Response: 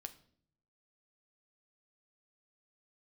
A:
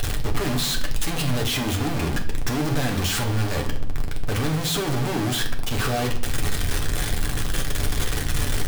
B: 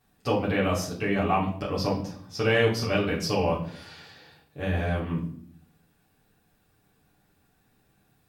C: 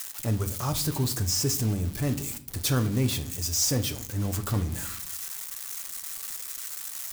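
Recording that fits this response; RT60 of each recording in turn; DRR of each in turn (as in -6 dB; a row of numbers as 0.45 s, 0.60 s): C; 0.55 s, 0.55 s, 0.60 s; 1.0 dB, -6.5 dB, 7.5 dB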